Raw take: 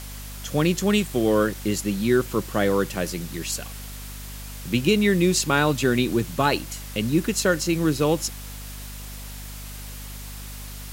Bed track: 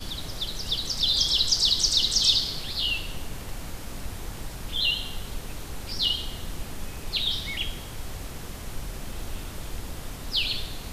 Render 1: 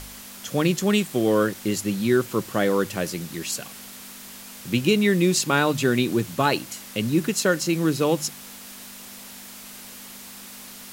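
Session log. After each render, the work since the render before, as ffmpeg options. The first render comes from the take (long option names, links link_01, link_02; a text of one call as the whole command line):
ffmpeg -i in.wav -af "bandreject=frequency=50:width_type=h:width=4,bandreject=frequency=100:width_type=h:width=4,bandreject=frequency=150:width_type=h:width=4" out.wav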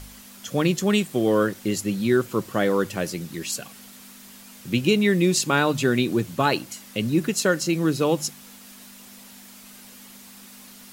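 ffmpeg -i in.wav -af "afftdn=noise_reduction=6:noise_floor=-42" out.wav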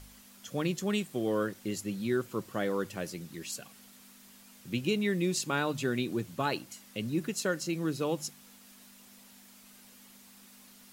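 ffmpeg -i in.wav -af "volume=-10dB" out.wav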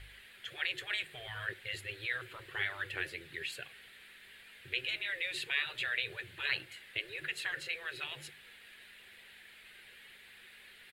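ffmpeg -i in.wav -af "afftfilt=real='re*lt(hypot(re,im),0.0562)':imag='im*lt(hypot(re,im),0.0562)':win_size=1024:overlap=0.75,firequalizer=gain_entry='entry(120,0);entry(220,-22);entry(370,2);entry(610,-4);entry(1100,-7);entry(1700,12);entry(3900,3);entry(5700,-19);entry(8900,-8);entry(14000,-14)':delay=0.05:min_phase=1" out.wav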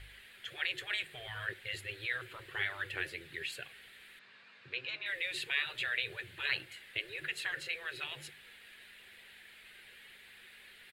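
ffmpeg -i in.wav -filter_complex "[0:a]asettb=1/sr,asplit=3[link_01][link_02][link_03];[link_01]atrim=end=4.194[link_04];[link_02]atrim=start=4.19:end=5.06,asetpts=PTS-STARTPTS,afade=type=in:duration=0.004:curve=qsin,afade=type=out:start_time=0.866:duration=0.004:curve=qsin,highpass=frequency=120:width=0.5412,highpass=frequency=120:width=1.3066,equalizer=frequency=370:width_type=q:width=4:gain=-5,equalizer=frequency=1100:width_type=q:width=4:gain=8,equalizer=frequency=2000:width_type=q:width=4:gain=-6,equalizer=frequency=3200:width_type=q:width=4:gain=-8,lowpass=frequency=5500:width=0.5412,lowpass=frequency=5500:width=1.3066[link_05];[link_03]atrim=start=5.056[link_06];[link_04][link_05]acrossfade=duration=0.004:curve1=hsin:curve2=qsin[link_07];[link_07][link_06]acrossfade=duration=0.004:curve1=qsin:curve2=hsin" out.wav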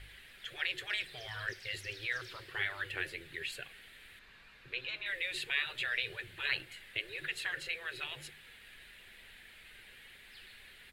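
ffmpeg -i in.wav -i bed.wav -filter_complex "[1:a]volume=-32.5dB[link_01];[0:a][link_01]amix=inputs=2:normalize=0" out.wav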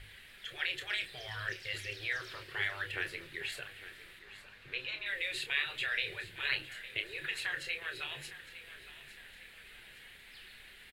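ffmpeg -i in.wav -filter_complex "[0:a]asplit=2[link_01][link_02];[link_02]adelay=29,volume=-8dB[link_03];[link_01][link_03]amix=inputs=2:normalize=0,aecho=1:1:859|1718|2577|3436:0.178|0.0836|0.0393|0.0185" out.wav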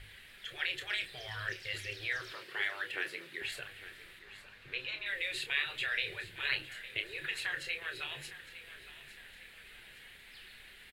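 ffmpeg -i in.wav -filter_complex "[0:a]asettb=1/sr,asplit=3[link_01][link_02][link_03];[link_01]atrim=end=2.334[link_04];[link_02]atrim=start=2.33:end=3.42,asetpts=PTS-STARTPTS,afade=type=in:duration=0.004:curve=qsin,afade=type=out:start_time=1.086:duration=0.004:curve=qsin,highpass=frequency=170:width=0.5412,highpass=frequency=170:width=1.3066[link_05];[link_03]atrim=start=3.416[link_06];[link_04][link_05]acrossfade=duration=0.004:curve1=hsin:curve2=qsin[link_07];[link_07][link_06]acrossfade=duration=0.004:curve1=qsin:curve2=hsin" out.wav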